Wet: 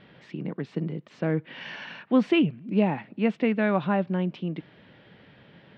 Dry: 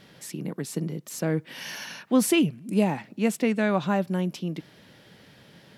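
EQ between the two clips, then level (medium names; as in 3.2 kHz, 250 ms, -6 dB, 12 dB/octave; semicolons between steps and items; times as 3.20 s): low-pass 3.2 kHz 24 dB/octave; 0.0 dB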